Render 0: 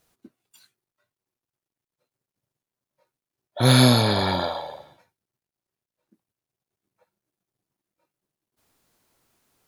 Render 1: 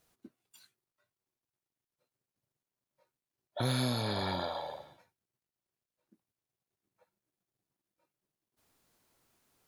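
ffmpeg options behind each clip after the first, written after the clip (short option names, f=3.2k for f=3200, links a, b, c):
-af "acompressor=threshold=-28dB:ratio=3,volume=-4.5dB"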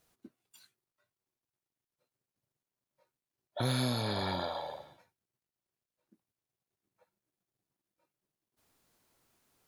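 -af anull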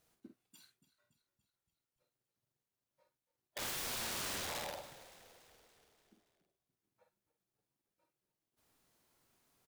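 -filter_complex "[0:a]aeval=exprs='(mod(47.3*val(0)+1,2)-1)/47.3':c=same,asplit=2[a][b];[b]adelay=49,volume=-7dB[c];[a][c]amix=inputs=2:normalize=0,asplit=7[d][e][f][g][h][i][j];[e]adelay=285,afreqshift=-32,volume=-16.5dB[k];[f]adelay=570,afreqshift=-64,volume=-20.9dB[l];[g]adelay=855,afreqshift=-96,volume=-25.4dB[m];[h]adelay=1140,afreqshift=-128,volume=-29.8dB[n];[i]adelay=1425,afreqshift=-160,volume=-34.2dB[o];[j]adelay=1710,afreqshift=-192,volume=-38.7dB[p];[d][k][l][m][n][o][p]amix=inputs=7:normalize=0,volume=-3dB"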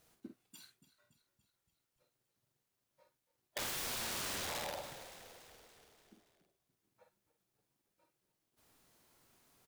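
-af "acompressor=threshold=-43dB:ratio=6,volume=5.5dB"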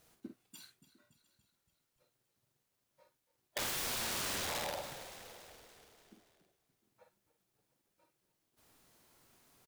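-af "aecho=1:1:704:0.075,volume=2.5dB"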